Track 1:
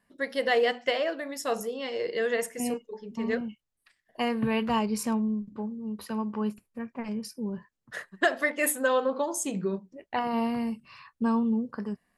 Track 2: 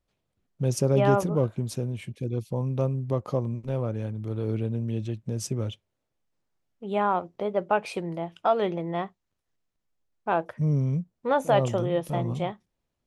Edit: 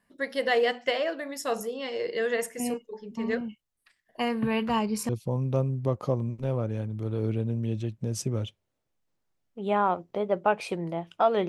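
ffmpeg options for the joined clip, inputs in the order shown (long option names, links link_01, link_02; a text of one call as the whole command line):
ffmpeg -i cue0.wav -i cue1.wav -filter_complex "[0:a]apad=whole_dur=11.48,atrim=end=11.48,atrim=end=5.092[link_01];[1:a]atrim=start=2.338:end=8.73[link_02];[link_01][link_02]acrossfade=duration=0.004:curve1=hsin:curve2=hsin" out.wav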